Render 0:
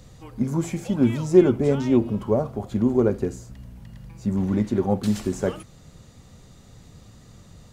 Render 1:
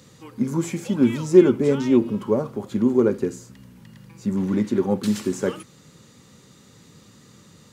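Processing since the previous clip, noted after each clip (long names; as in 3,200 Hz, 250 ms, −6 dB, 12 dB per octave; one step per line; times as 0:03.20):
high-pass filter 180 Hz 12 dB per octave
parametric band 690 Hz −13 dB 0.36 octaves
level +3 dB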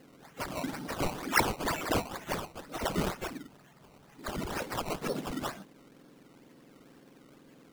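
frequency axis turned over on the octave scale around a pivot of 1,400 Hz
sample-and-hold swept by an LFO 18×, swing 100% 2.1 Hz
level −6.5 dB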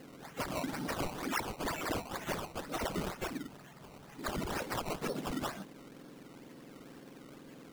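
downward compressor 6 to 1, threshold −38 dBFS, peak gain reduction 17 dB
level +4.5 dB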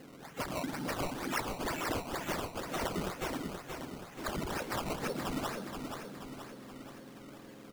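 repeating echo 477 ms, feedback 53%, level −6 dB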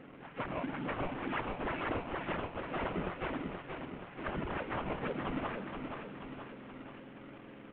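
variable-slope delta modulation 16 kbit/s
convolution reverb RT60 1.7 s, pre-delay 57 ms, DRR 18.5 dB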